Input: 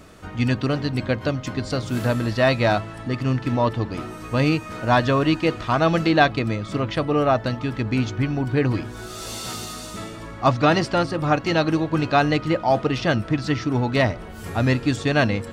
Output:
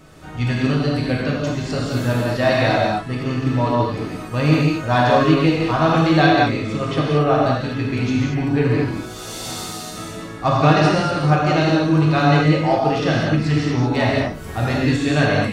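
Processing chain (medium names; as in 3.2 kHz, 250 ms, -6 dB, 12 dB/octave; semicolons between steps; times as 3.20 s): gated-style reverb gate 260 ms flat, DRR -4.5 dB; trim -3 dB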